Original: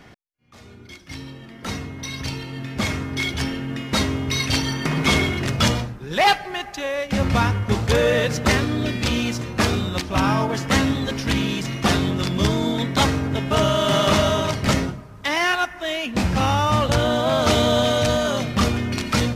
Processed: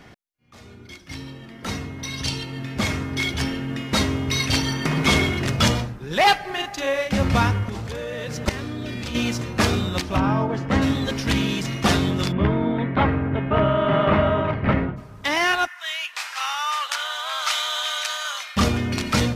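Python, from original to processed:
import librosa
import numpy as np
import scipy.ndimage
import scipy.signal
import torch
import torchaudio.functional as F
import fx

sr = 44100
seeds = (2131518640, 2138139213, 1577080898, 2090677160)

y = fx.spec_box(x, sr, start_s=2.18, length_s=0.26, low_hz=2700.0, high_hz=11000.0, gain_db=6)
y = fx.doubler(y, sr, ms=40.0, db=-3.0, at=(6.46, 7.09), fade=0.02)
y = fx.level_steps(y, sr, step_db=15, at=(7.69, 9.15))
y = fx.lowpass(y, sr, hz=1100.0, slope=6, at=(10.16, 10.81), fade=0.02)
y = fx.lowpass(y, sr, hz=2300.0, slope=24, at=(12.31, 14.96), fade=0.02)
y = fx.highpass(y, sr, hz=1100.0, slope=24, at=(15.66, 18.56), fade=0.02)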